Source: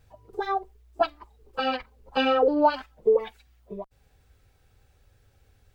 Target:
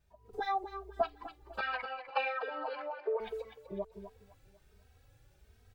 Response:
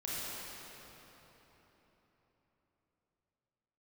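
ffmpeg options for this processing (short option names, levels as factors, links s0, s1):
-filter_complex "[0:a]asettb=1/sr,asplit=3[s0][s1][s2];[s0]atrim=end=1.604[s3];[s1]atrim=start=1.6:end=3.2,asetpts=PTS-STARTPTS,afade=t=in:d=0.004:c=qsin,afade=t=out:st=1.596:d=0.004:c=qsin,highpass=f=490:w=0.5412,highpass=f=490:w=1.3066,equalizer=f=670:t=q:w=4:g=3,equalizer=f=1000:t=q:w=4:g=5,equalizer=f=1500:t=q:w=4:g=6,equalizer=f=2200:t=q:w=4:g=8,equalizer=f=3200:t=q:w=4:g=-7,lowpass=f=4300:w=0.5412,lowpass=f=4300:w=1.3066[s4];[s2]atrim=start=3.196[s5];[s3][s4]acrossfade=d=0.004:c1=hsin:c2=qsin[s6];[s6][s5]acrossfade=d=0.004:c1=qsin:c2=hsin,acompressor=threshold=0.0447:ratio=6,asplit=2[s7][s8];[s8]aecho=0:1:250|500|750|1000:0.299|0.11|0.0409|0.0151[s9];[s7][s9]amix=inputs=2:normalize=0,dynaudnorm=f=180:g=3:m=2.99,asplit=2[s10][s11];[s11]adelay=2.9,afreqshift=1.3[s12];[s10][s12]amix=inputs=2:normalize=1,volume=0.355"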